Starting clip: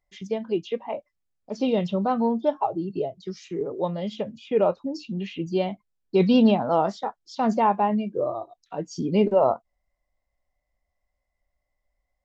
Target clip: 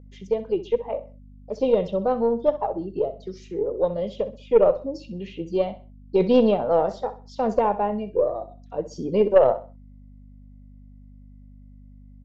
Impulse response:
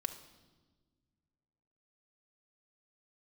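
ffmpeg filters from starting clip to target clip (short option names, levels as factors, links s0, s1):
-af "aeval=exprs='val(0)+0.01*(sin(2*PI*50*n/s)+sin(2*PI*2*50*n/s)/2+sin(2*PI*3*50*n/s)/3+sin(2*PI*4*50*n/s)/4+sin(2*PI*5*50*n/s)/5)':c=same,equalizer=f=500:t=o:w=0.72:g=13,aeval=exprs='0.944*(cos(1*acos(clip(val(0)/0.944,-1,1)))-cos(1*PI/2))+0.0944*(cos(2*acos(clip(val(0)/0.944,-1,1)))-cos(2*PI/2))+0.119*(cos(3*acos(clip(val(0)/0.944,-1,1)))-cos(3*PI/2))+0.0335*(cos(5*acos(clip(val(0)/0.944,-1,1)))-cos(5*PI/2))':c=same,aecho=1:1:64|128|192:0.2|0.0599|0.018,volume=0.668"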